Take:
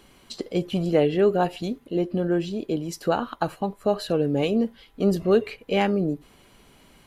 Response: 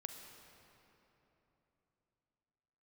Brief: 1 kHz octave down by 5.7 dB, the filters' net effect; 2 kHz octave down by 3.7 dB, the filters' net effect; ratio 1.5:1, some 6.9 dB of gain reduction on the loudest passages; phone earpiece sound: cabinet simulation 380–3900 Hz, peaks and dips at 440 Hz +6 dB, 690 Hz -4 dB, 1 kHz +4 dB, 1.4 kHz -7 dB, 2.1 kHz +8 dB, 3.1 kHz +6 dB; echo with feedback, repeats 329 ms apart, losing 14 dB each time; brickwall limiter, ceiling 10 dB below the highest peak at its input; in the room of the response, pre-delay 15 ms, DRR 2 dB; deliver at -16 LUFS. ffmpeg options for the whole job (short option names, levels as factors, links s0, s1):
-filter_complex "[0:a]equalizer=f=1000:t=o:g=-5,equalizer=f=2000:t=o:g=-8,acompressor=threshold=0.0178:ratio=1.5,alimiter=level_in=1.33:limit=0.0631:level=0:latency=1,volume=0.75,aecho=1:1:329|658:0.2|0.0399,asplit=2[s0][s1];[1:a]atrim=start_sample=2205,adelay=15[s2];[s1][s2]afir=irnorm=-1:irlink=0,volume=1.12[s3];[s0][s3]amix=inputs=2:normalize=0,highpass=380,equalizer=f=440:t=q:w=4:g=6,equalizer=f=690:t=q:w=4:g=-4,equalizer=f=1000:t=q:w=4:g=4,equalizer=f=1400:t=q:w=4:g=-7,equalizer=f=2100:t=q:w=4:g=8,equalizer=f=3100:t=q:w=4:g=6,lowpass=f=3900:w=0.5412,lowpass=f=3900:w=1.3066,volume=9.44"